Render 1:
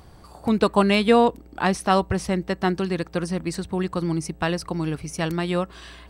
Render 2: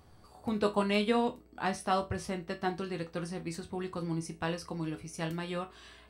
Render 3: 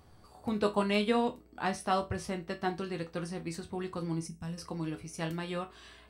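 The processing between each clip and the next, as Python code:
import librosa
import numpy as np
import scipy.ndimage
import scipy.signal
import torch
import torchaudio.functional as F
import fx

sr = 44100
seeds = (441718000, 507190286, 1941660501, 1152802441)

y1 = fx.resonator_bank(x, sr, root=40, chord='major', decay_s=0.22)
y2 = fx.spec_box(y1, sr, start_s=4.28, length_s=0.3, low_hz=260.0, high_hz=5000.0, gain_db=-15)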